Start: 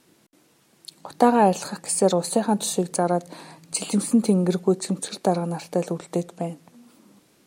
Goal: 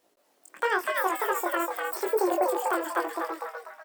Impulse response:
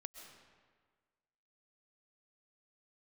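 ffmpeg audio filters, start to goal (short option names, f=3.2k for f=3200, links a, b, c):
-filter_complex "[0:a]dynaudnorm=f=340:g=9:m=4dB,asetrate=85554,aresample=44100,flanger=delay=18.5:depth=5.4:speed=0.93,asplit=6[a][b][c][d][e][f];[b]adelay=245,afreqshift=150,volume=-3dB[g];[c]adelay=490,afreqshift=300,volume=-11.4dB[h];[d]adelay=735,afreqshift=450,volume=-19.8dB[i];[e]adelay=980,afreqshift=600,volume=-28.2dB[j];[f]adelay=1225,afreqshift=750,volume=-36.6dB[k];[a][g][h][i][j][k]amix=inputs=6:normalize=0,volume=-6dB"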